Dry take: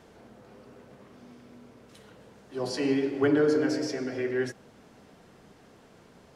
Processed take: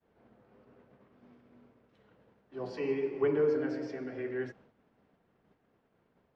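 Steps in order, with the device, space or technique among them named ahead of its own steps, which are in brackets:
hearing-loss simulation (low-pass filter 2,600 Hz 12 dB per octave; downward expander −47 dBFS)
0:02.77–0:03.55: EQ curve with evenly spaced ripples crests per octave 0.8, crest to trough 9 dB
level −7 dB

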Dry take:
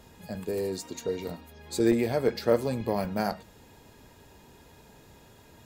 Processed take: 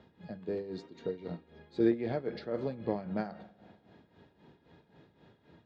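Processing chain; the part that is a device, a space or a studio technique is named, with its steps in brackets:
combo amplifier with spring reverb and tremolo (spring reverb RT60 2.2 s, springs 48 ms, chirp 55 ms, DRR 18.5 dB; amplitude tremolo 3.8 Hz, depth 74%; loudspeaker in its box 89–3,700 Hz, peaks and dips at 170 Hz +6 dB, 320 Hz +4 dB, 990 Hz −4 dB, 2,600 Hz −6 dB)
level −4 dB

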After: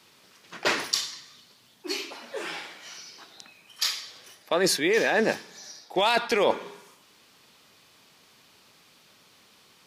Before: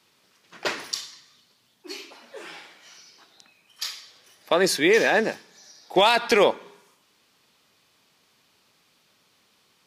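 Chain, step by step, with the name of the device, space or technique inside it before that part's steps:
compression on the reversed sound (reversed playback; downward compressor 6 to 1, threshold −26 dBFS, peak gain reduction 12.5 dB; reversed playback)
level +6 dB

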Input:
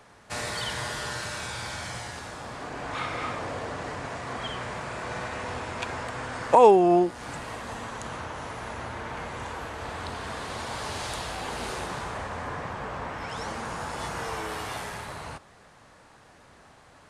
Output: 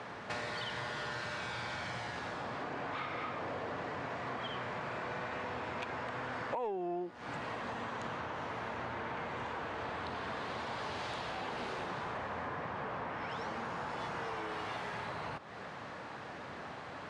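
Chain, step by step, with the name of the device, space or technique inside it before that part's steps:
AM radio (band-pass filter 120–3,600 Hz; downward compressor 5 to 1, threshold −48 dBFS, peak gain reduction 31.5 dB; soft clipping −36 dBFS, distortion −27 dB)
level +9.5 dB

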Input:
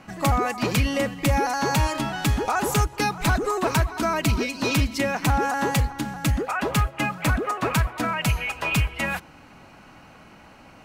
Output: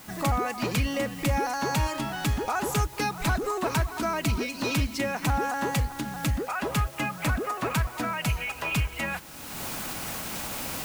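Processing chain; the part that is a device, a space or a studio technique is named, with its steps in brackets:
cheap recorder with automatic gain (white noise bed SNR 22 dB; camcorder AGC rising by 30 dB per second)
level −4.5 dB

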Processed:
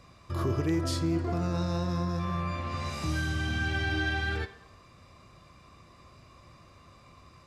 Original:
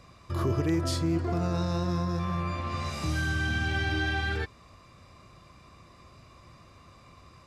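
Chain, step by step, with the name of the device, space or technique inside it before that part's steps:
filtered reverb send (on a send: high-pass filter 230 Hz + low-pass filter 5,700 Hz + convolution reverb RT60 0.80 s, pre-delay 11 ms, DRR 11 dB)
on the sum: level −1.5 dB

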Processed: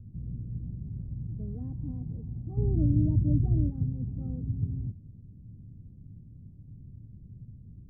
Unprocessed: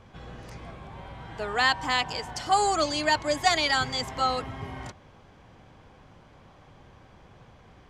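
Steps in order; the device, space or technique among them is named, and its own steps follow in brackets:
the neighbour's flat through the wall (low-pass filter 230 Hz 24 dB per octave; parametric band 110 Hz +5.5 dB 0.71 octaves)
0:02.57–0:03.70: low-shelf EQ 500 Hz +11.5 dB
level +5.5 dB

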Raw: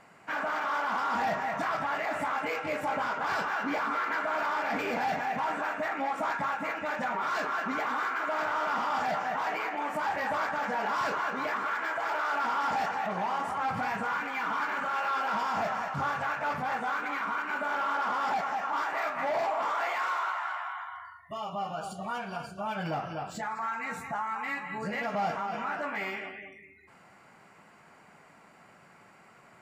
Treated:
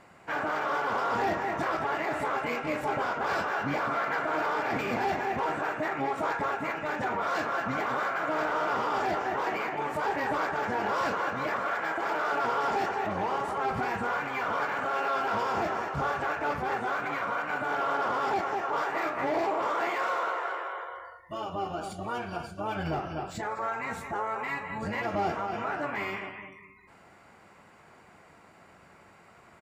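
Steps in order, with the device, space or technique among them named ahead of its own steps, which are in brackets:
octave pedal (pitch-shifted copies added −12 semitones −5 dB)

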